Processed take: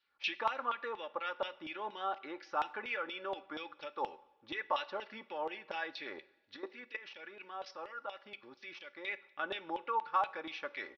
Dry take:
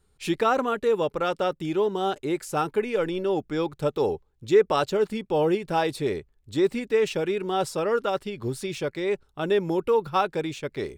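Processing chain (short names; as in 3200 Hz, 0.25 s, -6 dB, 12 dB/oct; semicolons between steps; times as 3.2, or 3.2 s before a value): low shelf 160 Hz -7 dB; 6.56–9.05 level quantiser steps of 19 dB; steep low-pass 5900 Hz 96 dB/oct; comb 3.5 ms, depth 58%; compressor 3:1, threshold -29 dBFS, peak gain reduction 9 dB; LFO band-pass saw down 4.2 Hz 850–3100 Hz; two-slope reverb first 0.69 s, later 2.1 s, from -17 dB, DRR 15 dB; gain +3 dB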